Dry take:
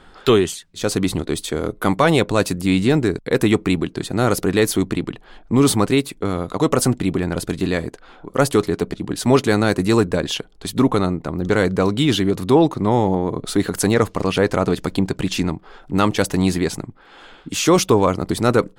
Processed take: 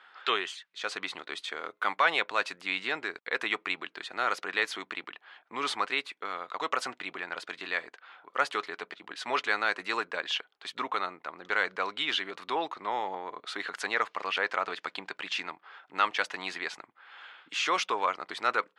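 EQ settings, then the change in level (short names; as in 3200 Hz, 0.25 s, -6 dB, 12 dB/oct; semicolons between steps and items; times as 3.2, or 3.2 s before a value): HPF 1400 Hz 12 dB/oct; LPF 2600 Hz 12 dB/oct; 0.0 dB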